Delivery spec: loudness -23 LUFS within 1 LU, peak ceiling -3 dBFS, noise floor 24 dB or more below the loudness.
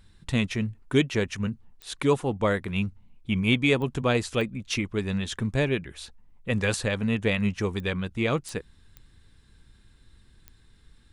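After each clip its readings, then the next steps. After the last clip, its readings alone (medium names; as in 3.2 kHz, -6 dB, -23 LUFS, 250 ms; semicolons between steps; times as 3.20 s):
clicks found 7; loudness -27.0 LUFS; peak level -8.5 dBFS; loudness target -23.0 LUFS
-> de-click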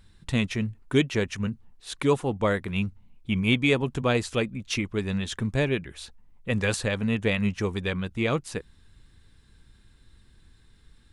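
clicks found 0; loudness -27.0 LUFS; peak level -8.5 dBFS; loudness target -23.0 LUFS
-> trim +4 dB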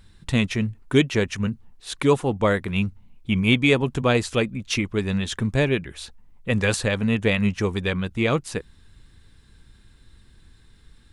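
loudness -23.0 LUFS; peak level -4.5 dBFS; noise floor -54 dBFS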